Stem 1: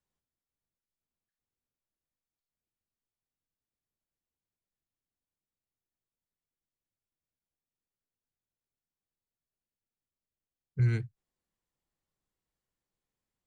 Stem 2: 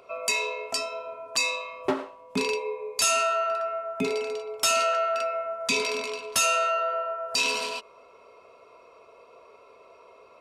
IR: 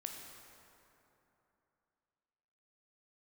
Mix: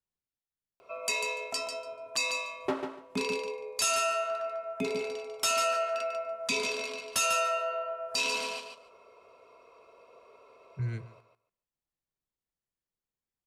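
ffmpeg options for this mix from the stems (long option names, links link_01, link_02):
-filter_complex "[0:a]volume=-7dB,asplit=2[link_01][link_02];[link_02]volume=-19dB[link_03];[1:a]adelay=800,volume=-5dB,asplit=2[link_04][link_05];[link_05]volume=-7.5dB[link_06];[link_03][link_06]amix=inputs=2:normalize=0,aecho=0:1:145|290|435:1|0.15|0.0225[link_07];[link_01][link_04][link_07]amix=inputs=3:normalize=0"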